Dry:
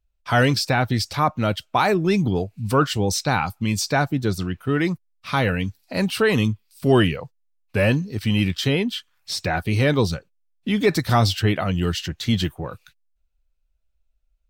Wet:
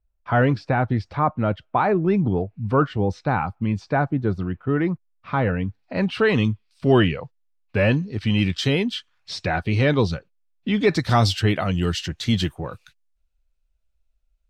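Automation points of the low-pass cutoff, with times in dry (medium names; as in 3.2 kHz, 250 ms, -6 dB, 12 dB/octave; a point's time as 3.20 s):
5.64 s 1.5 kHz
6.29 s 3.7 kHz
8.18 s 3.7 kHz
8.71 s 9.3 kHz
9.32 s 4.2 kHz
10.80 s 4.2 kHz
11.27 s 9.9 kHz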